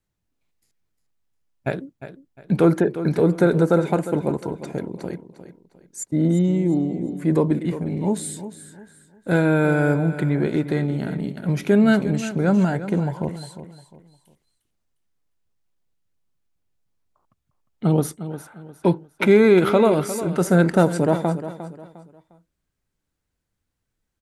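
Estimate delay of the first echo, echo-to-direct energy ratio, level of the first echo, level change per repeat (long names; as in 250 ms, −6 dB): 354 ms, −12.0 dB, −12.5 dB, −10.0 dB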